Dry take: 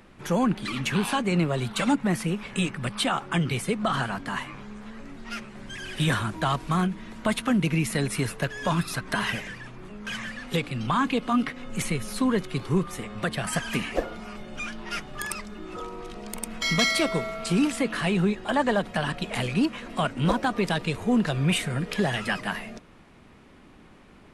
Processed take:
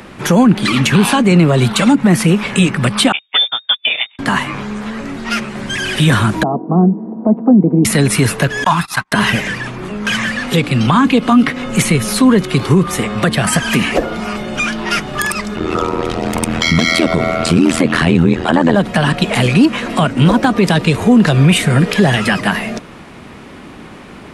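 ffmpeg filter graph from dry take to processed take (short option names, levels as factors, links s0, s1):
-filter_complex "[0:a]asettb=1/sr,asplit=3[s0][s1][s2];[s0]atrim=end=3.124[s3];[s1]atrim=start=3.12:end=4.19,asetpts=PTS-STARTPTS,afade=t=in:d=0.004:c=qsin,afade=t=out:st=1.066:d=0.004:c=qsin,agate=range=0.00631:threshold=0.0501:ratio=16:release=100:detection=peak,lowpass=f=3100:t=q:w=0.5098,lowpass=f=3100:t=q:w=0.6013,lowpass=f=3100:t=q:w=0.9,lowpass=f=3100:t=q:w=2.563,afreqshift=-3700[s4];[s2]atrim=start=4.186[s5];[s3][s4]acrossfade=d=0.004:c1=hsin:c2=qsin[s6];[s6][s5]acrossfade=d=0.004:c1=qsin:c2=hsin,asettb=1/sr,asplit=3[s7][s8][s9];[s7]atrim=end=6.434[s10];[s8]atrim=start=6.43:end=7.85,asetpts=PTS-STARTPTS,afade=t=in:d=0.004:c=qsin,afade=t=out:st=1.416:d=0.004:c=qsin,asuperpass=centerf=370:order=8:qfactor=0.63,bandreject=f=580:w=5.6[s11];[s9]atrim=start=7.846[s12];[s10][s11]acrossfade=d=0.004:c1=hsin:c2=qsin[s13];[s13][s12]acrossfade=d=0.004:c1=qsin:c2=hsin,asettb=1/sr,asplit=3[s14][s15][s16];[s14]atrim=end=8.644[s17];[s15]atrim=start=8.64:end=9.12,asetpts=PTS-STARTPTS,afade=t=in:d=0.004:c=qsin,afade=t=out:st=0.476:d=0.004:c=qsin,agate=range=0.01:threshold=0.0224:ratio=16:release=100:detection=peak,lowshelf=f=640:t=q:w=3:g=-9.5[s18];[s16]atrim=start=9.116[s19];[s17][s18]acrossfade=d=0.004:c1=hsin:c2=qsin[s20];[s20][s19]acrossfade=d=0.004:c1=qsin:c2=hsin,asettb=1/sr,asplit=3[s21][s22][s23];[s21]atrim=end=15.564[s24];[s22]atrim=start=15.56:end=18.75,asetpts=PTS-STARTPTS,afade=t=in:d=0.004:c=qsin,afade=t=out:st=3.186:d=0.004:c=qsin,highshelf=f=8700:g=-9,acontrast=68,tremolo=f=83:d=0.947[s25];[s23]atrim=start=18.746[s26];[s24][s25]acrossfade=d=0.004:c1=hsin:c2=qsin[s27];[s27][s26]acrossfade=d=0.004:c1=qsin:c2=hsin,highpass=f=81:p=1,acrossover=split=360[s28][s29];[s29]acompressor=threshold=0.02:ratio=2[s30];[s28][s30]amix=inputs=2:normalize=0,alimiter=level_in=9.44:limit=0.891:release=50:level=0:latency=1,volume=0.891"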